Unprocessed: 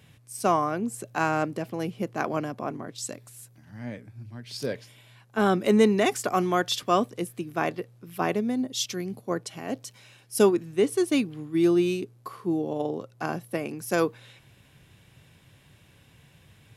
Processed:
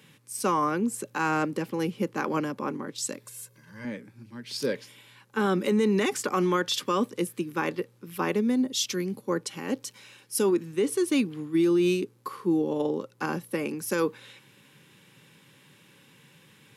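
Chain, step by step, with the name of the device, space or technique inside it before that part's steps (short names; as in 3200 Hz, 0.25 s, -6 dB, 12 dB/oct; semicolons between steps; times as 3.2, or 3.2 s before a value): PA system with an anti-feedback notch (HPF 160 Hz 24 dB/oct; Butterworth band-stop 680 Hz, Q 3.4; limiter -19.5 dBFS, peak gain reduction 10 dB); 3.25–3.85 comb 1.9 ms, depth 71%; 6.09–6.74 high shelf 8300 Hz -6 dB; gain +3 dB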